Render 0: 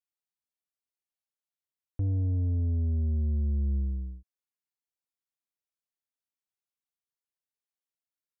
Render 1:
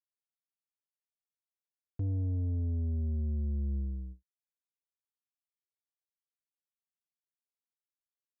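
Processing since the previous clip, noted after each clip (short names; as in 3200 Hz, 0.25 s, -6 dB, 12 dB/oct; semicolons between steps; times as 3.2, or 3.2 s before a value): gate with hold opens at -31 dBFS; low shelf 65 Hz -5.5 dB; gain -2.5 dB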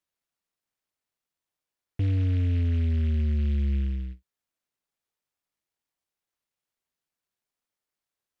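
noise-modulated delay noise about 2200 Hz, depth 0.057 ms; gain +7.5 dB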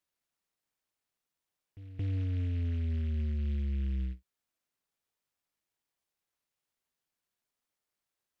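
reverse echo 0.224 s -23 dB; limiter -28.5 dBFS, peak gain reduction 8.5 dB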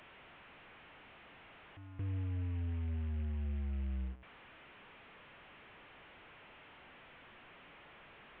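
delta modulation 16 kbps, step -45 dBFS; gain -5.5 dB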